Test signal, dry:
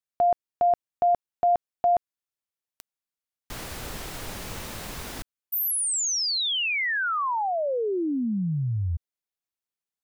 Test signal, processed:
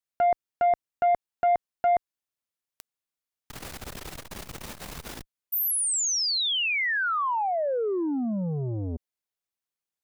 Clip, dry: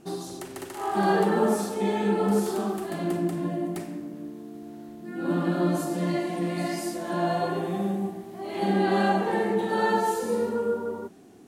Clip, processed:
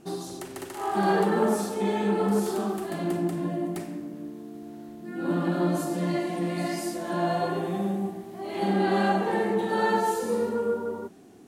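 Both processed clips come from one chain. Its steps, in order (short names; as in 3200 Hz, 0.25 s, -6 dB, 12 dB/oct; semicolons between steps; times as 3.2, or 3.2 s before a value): core saturation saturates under 440 Hz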